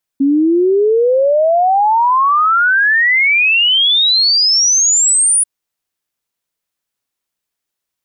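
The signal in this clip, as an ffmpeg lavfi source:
ffmpeg -f lavfi -i "aevalsrc='0.376*clip(min(t,5.24-t)/0.01,0,1)*sin(2*PI*270*5.24/log(9900/270)*(exp(log(9900/270)*t/5.24)-1))':duration=5.24:sample_rate=44100" out.wav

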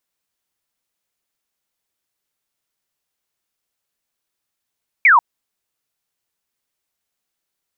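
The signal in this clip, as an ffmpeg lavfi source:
ffmpeg -f lavfi -i "aevalsrc='0.447*clip(t/0.002,0,1)*clip((0.14-t)/0.002,0,1)*sin(2*PI*2400*0.14/log(880/2400)*(exp(log(880/2400)*t/0.14)-1))':duration=0.14:sample_rate=44100" out.wav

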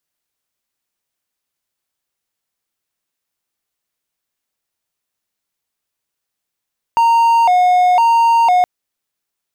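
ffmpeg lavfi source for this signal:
ffmpeg -f lavfi -i "aevalsrc='0.473*(1-4*abs(mod((824.5*t+100.5/0.99*(0.5-abs(mod(0.99*t,1)-0.5)))+0.25,1)-0.5))':duration=1.67:sample_rate=44100" out.wav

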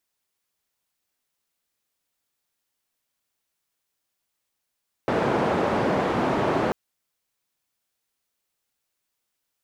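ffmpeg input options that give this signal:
ffmpeg -f lavfi -i "anoisesrc=color=white:duration=1.64:sample_rate=44100:seed=1,highpass=frequency=130,lowpass=frequency=740,volume=-3.1dB" out.wav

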